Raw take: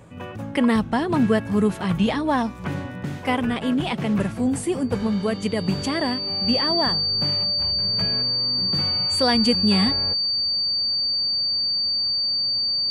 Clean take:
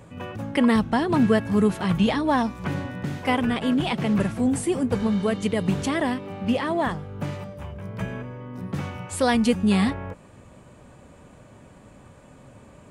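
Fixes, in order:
notch filter 4,600 Hz, Q 30

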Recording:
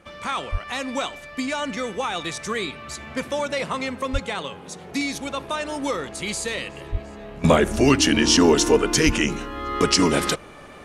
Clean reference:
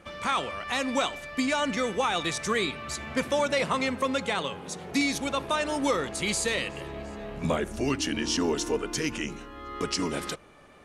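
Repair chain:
high-pass at the plosives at 0:00.51/0:04.12/0:06.91/0:09.05
level 0 dB, from 0:07.44 −11 dB

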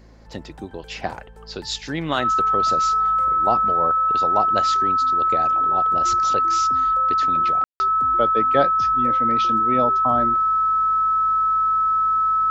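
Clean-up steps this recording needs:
hum removal 55 Hz, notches 4
notch filter 1,300 Hz, Q 30
ambience match 0:07.64–0:07.80

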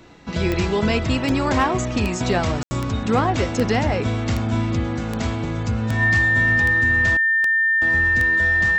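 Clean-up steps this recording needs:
clipped peaks rebuilt −9.5 dBFS
click removal
notch filter 1,800 Hz, Q 30
ambience match 0:02.63–0:02.71

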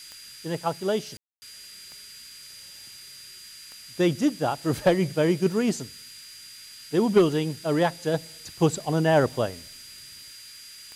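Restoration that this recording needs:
click removal
notch filter 4,800 Hz, Q 30
ambience match 0:01.17–0:01.42
noise reduction from a noise print 25 dB

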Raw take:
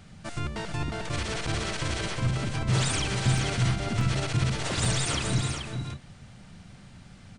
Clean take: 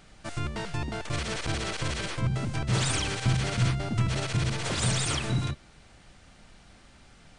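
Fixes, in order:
repair the gap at 0:03.38/0:04.01/0:04.85, 2 ms
noise reduction from a noise print 6 dB
echo removal 431 ms −6 dB

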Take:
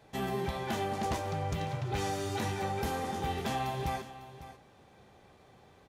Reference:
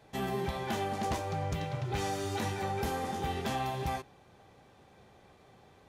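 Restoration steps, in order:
echo removal 551 ms −14.5 dB

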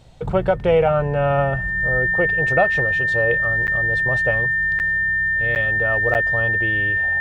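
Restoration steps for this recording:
notch filter 1,800 Hz, Q 30
repair the gap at 0:03.67/0:04.79/0:05.55/0:06.14, 9.2 ms

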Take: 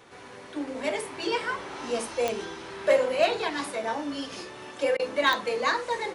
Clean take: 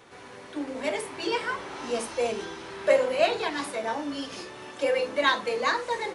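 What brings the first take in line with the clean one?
clipped peaks rebuilt −13 dBFS
click removal
repair the gap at 0:04.97, 23 ms

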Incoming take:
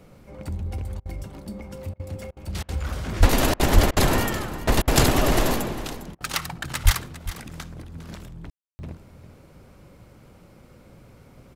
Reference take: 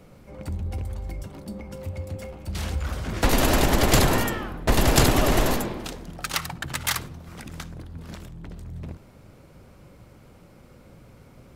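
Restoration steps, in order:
0:03.19–0:03.31: high-pass filter 140 Hz 24 dB per octave
0:03.74–0:03.86: high-pass filter 140 Hz 24 dB per octave
0:06.84–0:06.96: high-pass filter 140 Hz 24 dB per octave
ambience match 0:08.50–0:08.79
repair the gap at 0:01.00/0:01.94/0:02.31/0:02.63/0:03.54/0:03.91/0:04.82/0:06.15, 55 ms
echo removal 404 ms −14.5 dB

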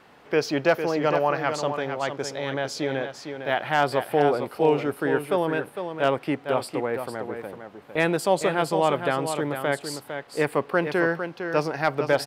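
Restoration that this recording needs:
clipped peaks rebuilt −9 dBFS
echo removal 455 ms −8 dB

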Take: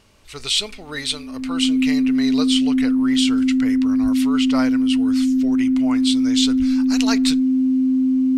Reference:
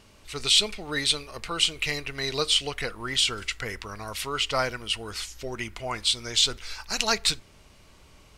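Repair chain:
notch filter 260 Hz, Q 30
high-pass at the plosives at 0:04.02/0:06.58

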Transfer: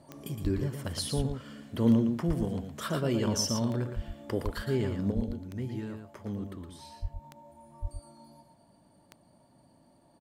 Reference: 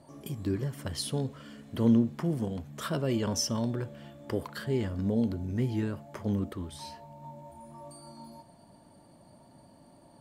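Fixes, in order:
click removal
high-pass at the plosives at 0:00.43/0:01.16/0:02.27/0:03.95/0:04.44/0:05.15/0:07.01/0:07.81
echo removal 115 ms −6.5 dB
level 0 dB, from 0:05.11 +6.5 dB

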